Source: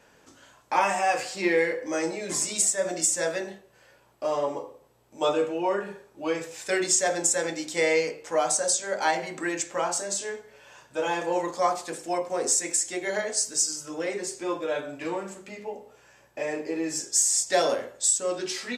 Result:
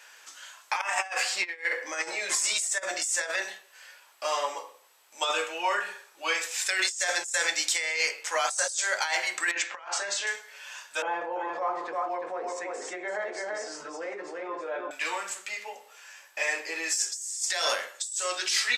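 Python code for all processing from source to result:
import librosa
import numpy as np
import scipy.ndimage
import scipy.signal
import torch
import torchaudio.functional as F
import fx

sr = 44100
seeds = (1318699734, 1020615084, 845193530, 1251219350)

y = fx.chain(x, sr, fx.high_shelf(hz=2600.0, db=-9.0),
    fx.over_compress(threshold_db=-30.0, ratio=-0.5), at=(0.81, 3.42))
y = fx.chain(y, sr, fx.lowpass(hz=2700.0, slope=12),
    fx.over_compress(threshold_db=-34.0, ratio=-0.5), at=(9.51, 10.27))
y = fx.chain(y, sr, fx.bessel_lowpass(hz=520.0, order=2),
    fx.echo_single(ms=338, db=-5.0),
    fx.env_flatten(amount_pct=70), at=(11.02, 14.91))
y = scipy.signal.sosfilt(scipy.signal.butter(2, 1500.0, 'highpass', fs=sr, output='sos'), y)
y = fx.over_compress(y, sr, threshold_db=-35.0, ratio=-1.0)
y = y * librosa.db_to_amplitude(7.0)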